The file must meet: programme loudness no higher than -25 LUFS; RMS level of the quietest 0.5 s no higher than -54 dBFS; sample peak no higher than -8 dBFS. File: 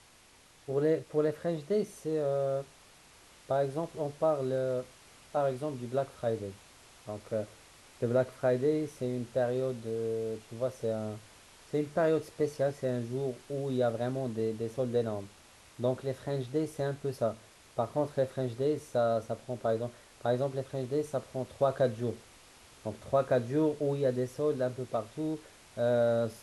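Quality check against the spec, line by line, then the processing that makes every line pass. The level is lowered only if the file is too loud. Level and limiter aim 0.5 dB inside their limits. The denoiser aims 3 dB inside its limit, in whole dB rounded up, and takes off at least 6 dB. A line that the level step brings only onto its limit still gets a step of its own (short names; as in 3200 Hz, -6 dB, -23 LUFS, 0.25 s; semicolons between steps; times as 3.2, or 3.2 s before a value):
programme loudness -32.5 LUFS: OK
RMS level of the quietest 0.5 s -59 dBFS: OK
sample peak -16.0 dBFS: OK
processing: none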